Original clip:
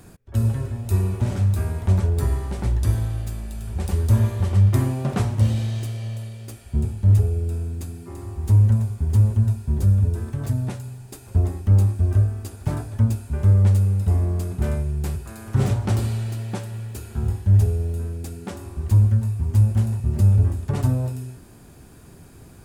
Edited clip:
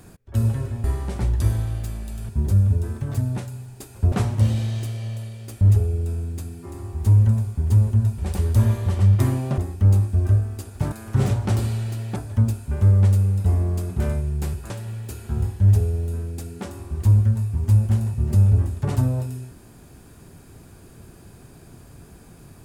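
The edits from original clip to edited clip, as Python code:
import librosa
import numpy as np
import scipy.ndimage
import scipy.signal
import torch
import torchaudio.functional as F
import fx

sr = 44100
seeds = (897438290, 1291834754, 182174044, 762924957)

y = fx.edit(x, sr, fx.cut(start_s=0.84, length_s=1.43),
    fx.swap(start_s=3.72, length_s=1.4, other_s=9.61, other_length_s=1.83),
    fx.cut(start_s=6.61, length_s=0.43),
    fx.move(start_s=15.32, length_s=1.24, to_s=12.78), tone=tone)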